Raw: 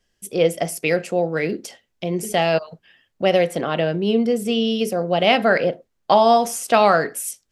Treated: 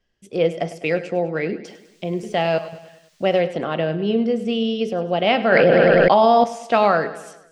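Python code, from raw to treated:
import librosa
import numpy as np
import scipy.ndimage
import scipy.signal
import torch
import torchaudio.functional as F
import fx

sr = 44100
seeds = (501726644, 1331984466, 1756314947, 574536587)

y = fx.dmg_noise_colour(x, sr, seeds[0], colour='violet', level_db=-41.0, at=(1.65, 3.39), fade=0.02)
y = fx.air_absorb(y, sr, metres=140.0)
y = fx.echo_feedback(y, sr, ms=101, feedback_pct=54, wet_db=-15)
y = fx.env_flatten(y, sr, amount_pct=100, at=(5.52, 6.44))
y = y * 10.0 ** (-1.0 / 20.0)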